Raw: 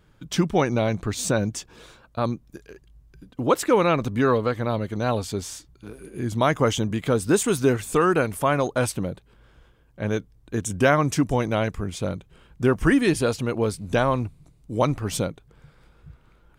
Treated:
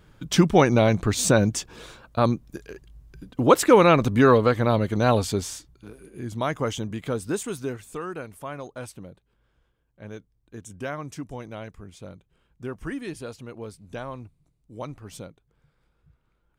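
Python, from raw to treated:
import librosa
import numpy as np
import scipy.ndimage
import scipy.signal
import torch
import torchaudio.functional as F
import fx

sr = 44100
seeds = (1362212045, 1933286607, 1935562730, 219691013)

y = fx.gain(x, sr, db=fx.line((5.26, 4.0), (6.1, -6.0), (7.12, -6.0), (8.03, -14.0)))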